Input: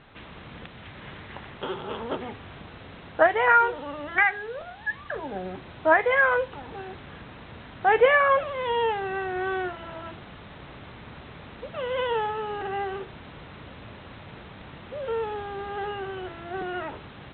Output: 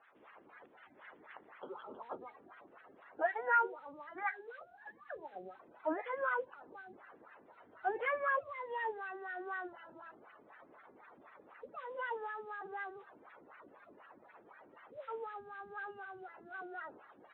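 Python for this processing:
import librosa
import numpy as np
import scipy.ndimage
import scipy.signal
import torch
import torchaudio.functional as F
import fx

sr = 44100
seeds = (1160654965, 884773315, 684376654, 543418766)

y = fx.spec_quant(x, sr, step_db=30)
y = fx.peak_eq(y, sr, hz=93.0, db=13.0, octaves=0.36, at=(7.62, 9.06))
y = fx.wah_lfo(y, sr, hz=4.0, low_hz=270.0, high_hz=1700.0, q=2.3)
y = fx.low_shelf(y, sr, hz=280.0, db=-8.5)
y = F.gain(torch.from_numpy(y), -6.0).numpy()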